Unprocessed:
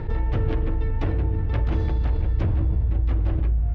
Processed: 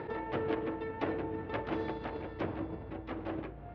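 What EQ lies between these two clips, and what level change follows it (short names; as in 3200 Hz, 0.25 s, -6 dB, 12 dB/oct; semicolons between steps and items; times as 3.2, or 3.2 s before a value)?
HPF 330 Hz 12 dB/oct; air absorption 190 m; 0.0 dB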